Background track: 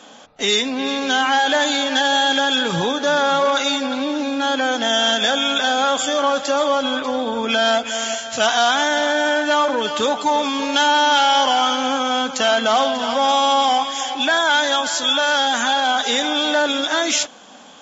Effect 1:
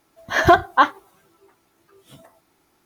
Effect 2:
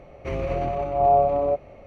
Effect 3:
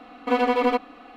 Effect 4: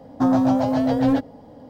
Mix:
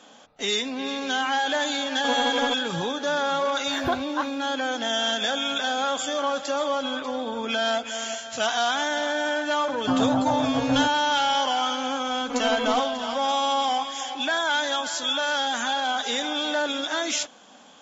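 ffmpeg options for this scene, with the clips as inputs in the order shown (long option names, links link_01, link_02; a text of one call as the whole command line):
ffmpeg -i bed.wav -i cue0.wav -i cue1.wav -i cue2.wav -i cue3.wav -filter_complex "[3:a]asplit=2[link_01][link_02];[0:a]volume=-7.5dB[link_03];[4:a]highshelf=frequency=2100:width_type=q:width=3:gain=-11[link_04];[link_02]lowshelf=frequency=190:gain=11.5[link_05];[link_01]atrim=end=1.16,asetpts=PTS-STARTPTS,volume=-6.5dB,afade=type=in:duration=0.004:curve=hsin,afade=type=out:start_time=1.156:duration=0.004:curve=hsin,adelay=1770[link_06];[1:a]atrim=end=2.85,asetpts=PTS-STARTPTS,volume=-13.5dB,afade=type=in:duration=0.004:curve=hsin,afade=type=out:start_time=2.846:duration=0.004:curve=hsin,adelay=3390[link_07];[link_04]atrim=end=1.69,asetpts=PTS-STARTPTS,volume=-5.5dB,afade=type=in:duration=0.004:curve=hsin,afade=type=out:start_time=1.686:duration=0.004:curve=hsin,adelay=9670[link_08];[link_05]atrim=end=1.16,asetpts=PTS-STARTPTS,volume=-8.5dB,afade=type=in:duration=0.004:curve=hsin,afade=type=out:start_time=1.156:duration=0.004:curve=hsin,adelay=12030[link_09];[link_03][link_06][link_07][link_08][link_09]amix=inputs=5:normalize=0" out.wav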